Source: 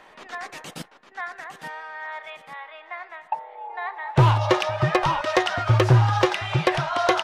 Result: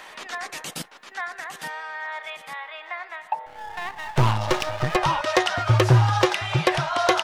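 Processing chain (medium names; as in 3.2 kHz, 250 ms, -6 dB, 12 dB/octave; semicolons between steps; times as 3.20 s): 3.46–4.96 s: partial rectifier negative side -12 dB; treble shelf 4.9 kHz +7 dB; tape noise reduction on one side only encoder only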